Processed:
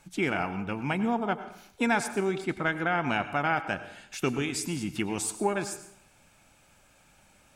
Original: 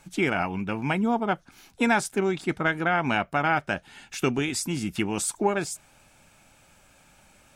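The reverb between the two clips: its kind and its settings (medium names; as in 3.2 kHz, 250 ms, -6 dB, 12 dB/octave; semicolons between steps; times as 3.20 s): plate-style reverb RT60 0.66 s, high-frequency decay 0.8×, pre-delay 80 ms, DRR 11.5 dB; trim -3.5 dB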